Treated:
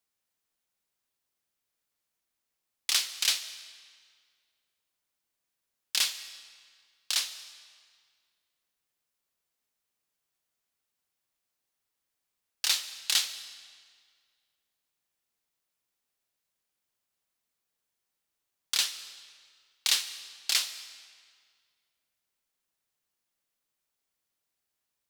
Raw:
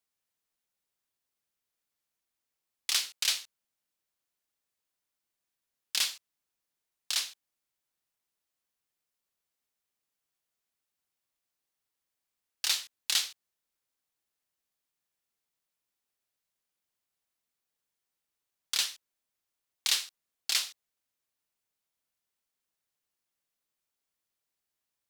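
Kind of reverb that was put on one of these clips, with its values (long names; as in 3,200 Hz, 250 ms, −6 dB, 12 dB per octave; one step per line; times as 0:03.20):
comb and all-pass reverb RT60 1.9 s, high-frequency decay 0.9×, pre-delay 100 ms, DRR 14 dB
level +2 dB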